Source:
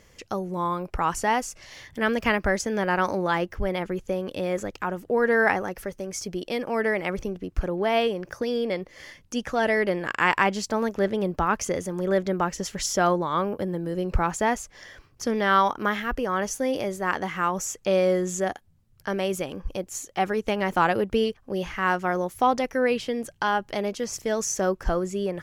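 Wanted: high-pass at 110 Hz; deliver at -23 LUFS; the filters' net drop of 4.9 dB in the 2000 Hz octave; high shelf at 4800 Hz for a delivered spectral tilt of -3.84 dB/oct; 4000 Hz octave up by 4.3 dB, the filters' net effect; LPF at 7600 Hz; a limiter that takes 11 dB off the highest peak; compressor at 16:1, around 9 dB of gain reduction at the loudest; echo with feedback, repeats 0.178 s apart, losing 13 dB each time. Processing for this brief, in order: HPF 110 Hz; LPF 7600 Hz; bell 2000 Hz -8.5 dB; bell 4000 Hz +7.5 dB; high shelf 4800 Hz +4.5 dB; compressor 16:1, threshold -26 dBFS; limiter -24 dBFS; feedback echo 0.178 s, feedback 22%, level -13 dB; gain +11 dB

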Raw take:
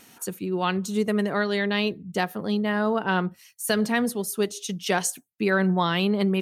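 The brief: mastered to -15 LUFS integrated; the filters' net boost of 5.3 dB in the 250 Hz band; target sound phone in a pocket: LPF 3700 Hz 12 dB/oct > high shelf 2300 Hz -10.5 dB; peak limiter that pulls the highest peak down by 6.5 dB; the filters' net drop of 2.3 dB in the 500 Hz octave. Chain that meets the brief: bell 250 Hz +8.5 dB; bell 500 Hz -6 dB; limiter -15 dBFS; LPF 3700 Hz 12 dB/oct; high shelf 2300 Hz -10.5 dB; gain +10 dB

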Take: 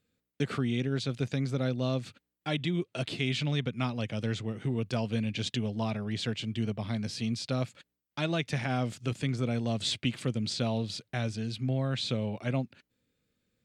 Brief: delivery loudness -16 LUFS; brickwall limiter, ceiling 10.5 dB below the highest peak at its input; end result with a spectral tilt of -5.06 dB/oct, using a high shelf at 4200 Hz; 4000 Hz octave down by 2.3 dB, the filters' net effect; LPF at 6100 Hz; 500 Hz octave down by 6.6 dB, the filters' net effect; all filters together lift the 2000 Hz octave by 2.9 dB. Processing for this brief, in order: LPF 6100 Hz; bell 500 Hz -9 dB; bell 2000 Hz +5 dB; bell 4000 Hz -6.5 dB; high shelf 4200 Hz +5 dB; gain +19.5 dB; limiter -5.5 dBFS

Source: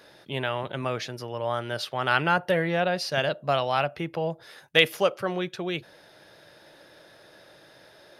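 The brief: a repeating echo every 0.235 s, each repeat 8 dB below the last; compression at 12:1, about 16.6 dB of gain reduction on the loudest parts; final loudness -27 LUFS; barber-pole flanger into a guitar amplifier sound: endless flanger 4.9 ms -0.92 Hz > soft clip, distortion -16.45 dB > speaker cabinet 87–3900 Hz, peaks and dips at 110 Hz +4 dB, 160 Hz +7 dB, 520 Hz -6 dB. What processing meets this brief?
compressor 12:1, threshold -30 dBFS; feedback echo 0.235 s, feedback 40%, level -8 dB; endless flanger 4.9 ms -0.92 Hz; soft clip -29.5 dBFS; speaker cabinet 87–3900 Hz, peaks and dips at 110 Hz +4 dB, 160 Hz +7 dB, 520 Hz -6 dB; gain +13 dB

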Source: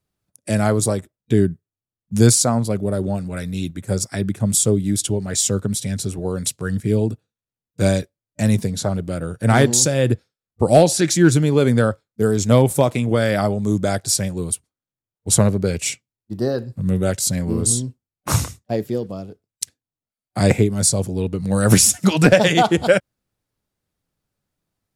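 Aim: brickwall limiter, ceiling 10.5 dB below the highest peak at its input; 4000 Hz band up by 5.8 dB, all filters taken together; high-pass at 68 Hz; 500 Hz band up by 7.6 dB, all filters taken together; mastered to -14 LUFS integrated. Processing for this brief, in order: HPF 68 Hz; bell 500 Hz +9 dB; bell 4000 Hz +7.5 dB; gain +3.5 dB; limiter -1.5 dBFS

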